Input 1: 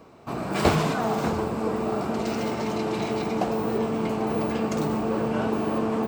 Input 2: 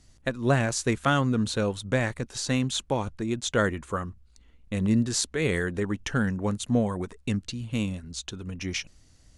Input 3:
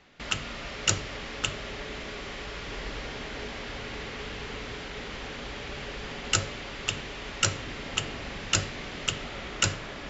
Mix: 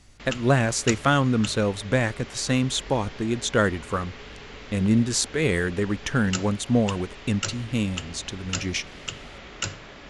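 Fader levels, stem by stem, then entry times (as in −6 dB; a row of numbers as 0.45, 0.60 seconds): muted, +3.0 dB, −4.5 dB; muted, 0.00 s, 0.00 s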